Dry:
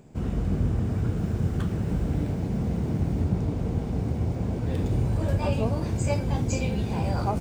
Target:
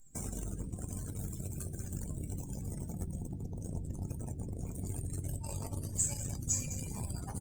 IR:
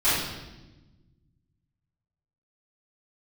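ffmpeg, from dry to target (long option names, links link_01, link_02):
-filter_complex "[0:a]lowshelf=frequency=430:gain=-9.5,asplit=2[link_01][link_02];[link_02]adelay=202,lowpass=frequency=4900:poles=1,volume=-7dB,asplit=2[link_03][link_04];[link_04]adelay=202,lowpass=frequency=4900:poles=1,volume=0.16,asplit=2[link_05][link_06];[link_06]adelay=202,lowpass=frequency=4900:poles=1,volume=0.16[link_07];[link_01][link_03][link_05][link_07]amix=inputs=4:normalize=0,asubboost=boost=5:cutoff=180,acompressor=threshold=-39dB:ratio=8,aexciter=amount=9.9:drive=9.1:freq=5800,acrusher=bits=7:dc=4:mix=0:aa=0.000001,asplit=2[link_08][link_09];[link_09]adelay=21,volume=-11dB[link_10];[link_08][link_10]amix=inputs=2:normalize=0,asplit=2[link_11][link_12];[1:a]atrim=start_sample=2205[link_13];[link_12][link_13]afir=irnorm=-1:irlink=0,volume=-21dB[link_14];[link_11][link_14]amix=inputs=2:normalize=0,afftdn=noise_reduction=25:noise_floor=-45" -ar 48000 -c:a libopus -b:a 64k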